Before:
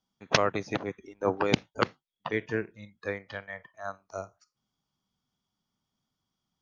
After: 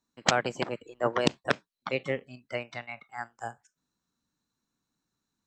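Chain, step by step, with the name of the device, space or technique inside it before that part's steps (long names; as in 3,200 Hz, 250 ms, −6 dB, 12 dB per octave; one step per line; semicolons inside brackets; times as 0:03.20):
nightcore (speed change +21%)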